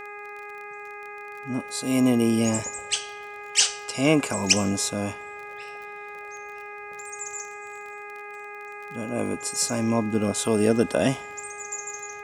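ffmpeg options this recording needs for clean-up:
-af "adeclick=t=4,bandreject=f=412.3:t=h:w=4,bandreject=f=824.6:t=h:w=4,bandreject=f=1.2369k:t=h:w=4,bandreject=f=1.6492k:t=h:w=4,bandreject=f=2.0615k:t=h:w=4,bandreject=f=2.4738k:t=h:w=4"

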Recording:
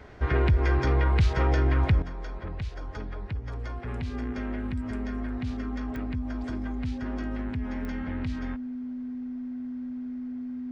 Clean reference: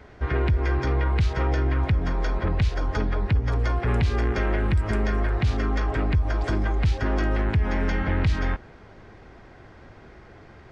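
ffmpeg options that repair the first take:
-af "adeclick=t=4,bandreject=f=250:w=30,asetnsamples=n=441:p=0,asendcmd='2.02 volume volume 11.5dB',volume=0dB"

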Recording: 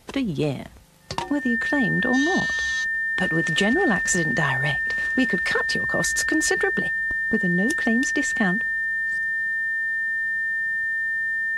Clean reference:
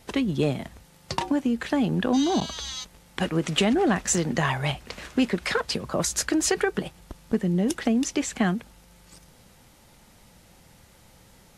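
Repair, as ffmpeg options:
-af "bandreject=f=1.8k:w=30"

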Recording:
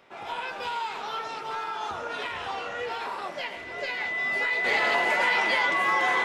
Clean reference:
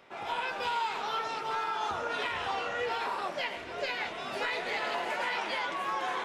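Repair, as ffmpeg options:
-af "bandreject=f=2k:w=30,asetnsamples=n=441:p=0,asendcmd='4.64 volume volume -7dB',volume=0dB"

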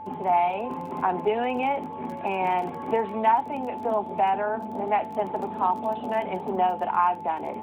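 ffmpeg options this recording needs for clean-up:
-af "adeclick=t=4,bandreject=f=96.2:t=h:w=4,bandreject=f=192.4:t=h:w=4,bandreject=f=288.6:t=h:w=4,bandreject=f=384.8:t=h:w=4,bandreject=f=481:t=h:w=4,bandreject=f=870:w=30"

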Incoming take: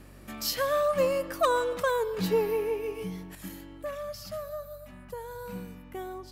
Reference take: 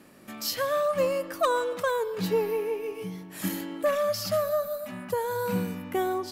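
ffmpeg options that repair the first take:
-af "bandreject=f=46.9:t=h:w=4,bandreject=f=93.8:t=h:w=4,bandreject=f=140.7:t=h:w=4,asetnsamples=n=441:p=0,asendcmd='3.35 volume volume 11dB',volume=0dB"

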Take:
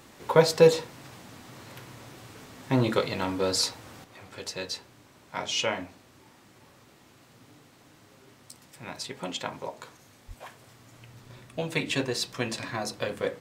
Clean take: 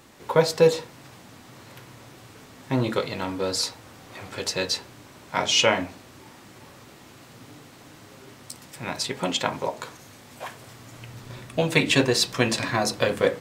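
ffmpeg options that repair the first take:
-filter_complex "[0:a]asplit=3[a][b][c];[a]afade=t=out:st=10.27:d=0.02[d];[b]highpass=f=140:w=0.5412,highpass=f=140:w=1.3066,afade=t=in:st=10.27:d=0.02,afade=t=out:st=10.39:d=0.02[e];[c]afade=t=in:st=10.39:d=0.02[f];[d][e][f]amix=inputs=3:normalize=0,asetnsamples=n=441:p=0,asendcmd='4.04 volume volume 8.5dB',volume=0dB"

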